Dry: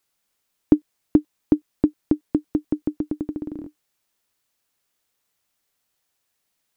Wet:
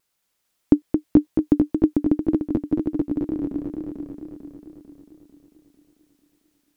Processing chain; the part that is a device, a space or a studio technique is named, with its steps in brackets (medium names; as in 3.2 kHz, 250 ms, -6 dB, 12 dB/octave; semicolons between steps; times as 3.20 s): multi-head tape echo (multi-head delay 223 ms, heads first and second, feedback 58%, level -6.5 dB; wow and flutter)